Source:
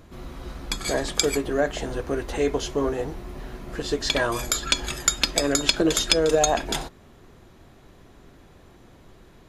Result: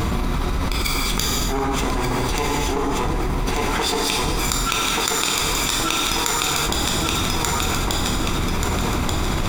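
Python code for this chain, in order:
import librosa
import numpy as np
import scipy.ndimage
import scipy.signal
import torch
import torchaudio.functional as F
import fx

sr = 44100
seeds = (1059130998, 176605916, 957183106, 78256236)

y = fx.lower_of_two(x, sr, delay_ms=0.83)
y = fx.highpass(y, sr, hz=440.0, slope=6, at=(3.5, 5.79))
y = fx.gate_flip(y, sr, shuts_db=-18.0, range_db=-25)
y = fx.echo_feedback(y, sr, ms=1184, feedback_pct=33, wet_db=-6.0)
y = fx.rev_gated(y, sr, seeds[0], gate_ms=460, shape='falling', drr_db=0.0)
y = fx.env_flatten(y, sr, amount_pct=100)
y = y * librosa.db_to_amplitude(2.5)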